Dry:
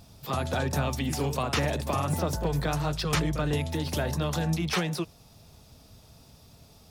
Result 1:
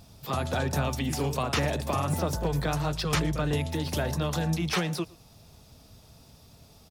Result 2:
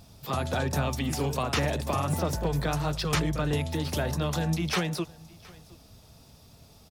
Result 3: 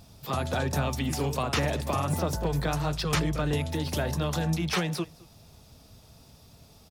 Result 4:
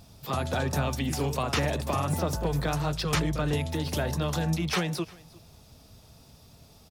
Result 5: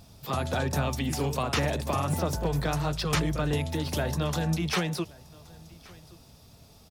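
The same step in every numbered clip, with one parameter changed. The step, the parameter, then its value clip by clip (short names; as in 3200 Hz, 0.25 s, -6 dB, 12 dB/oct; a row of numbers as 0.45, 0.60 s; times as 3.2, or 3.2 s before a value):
echo, time: 0.116, 0.717, 0.215, 0.352, 1.124 s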